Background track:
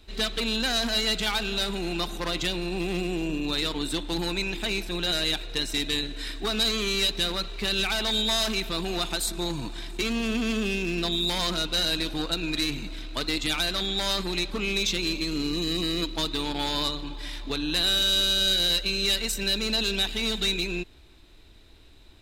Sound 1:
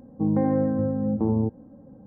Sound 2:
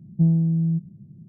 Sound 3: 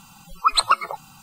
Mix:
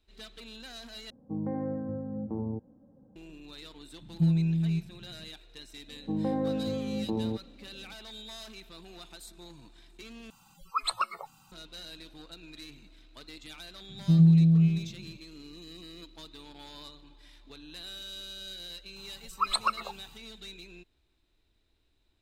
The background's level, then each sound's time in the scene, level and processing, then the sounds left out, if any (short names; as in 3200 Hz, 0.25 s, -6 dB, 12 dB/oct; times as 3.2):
background track -19.5 dB
1.1 replace with 1 -11 dB
4.01 add 2 -6 dB
5.88 add 1 -6 dB + low shelf 100 Hz -11.5 dB
10.3 replace with 3 -12 dB + notches 50/100/150/200/250 Hz
13.89 add 2 -4 dB + delay with a stepping band-pass 0.104 s, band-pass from 170 Hz, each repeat 0.7 oct, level -2 dB
18.96 add 3 -10 dB